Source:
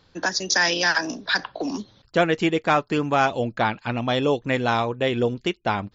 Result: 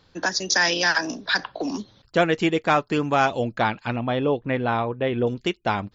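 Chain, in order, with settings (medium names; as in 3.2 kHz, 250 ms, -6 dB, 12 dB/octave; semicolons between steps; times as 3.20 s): 3.96–5.27 s: distance through air 360 m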